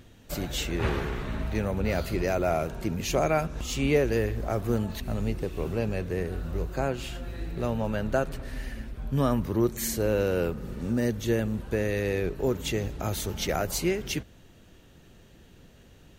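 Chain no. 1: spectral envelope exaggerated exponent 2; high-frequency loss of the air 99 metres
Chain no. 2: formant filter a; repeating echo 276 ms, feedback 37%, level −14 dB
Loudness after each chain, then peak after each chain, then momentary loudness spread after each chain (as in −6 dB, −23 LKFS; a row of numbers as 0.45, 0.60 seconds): −29.5, −41.5 LKFS; −12.5, −21.5 dBFS; 9, 15 LU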